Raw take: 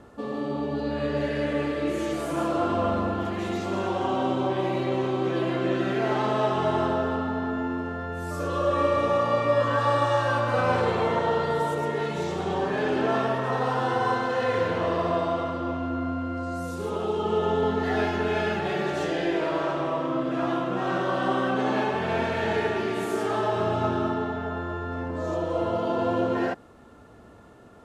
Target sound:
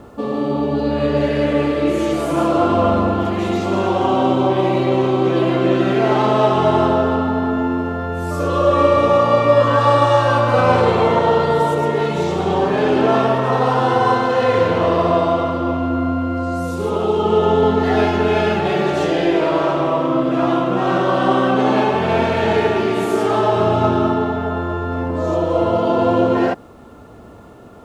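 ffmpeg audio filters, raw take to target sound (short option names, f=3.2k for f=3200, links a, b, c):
-filter_complex "[0:a]equalizer=f=1.7k:t=o:w=0.4:g=-5.5,asplit=2[a][b];[b]adynamicsmooth=sensitivity=7.5:basefreq=3.8k,volume=-8dB[c];[a][c]amix=inputs=2:normalize=0,acrusher=bits=11:mix=0:aa=0.000001,volume=7dB"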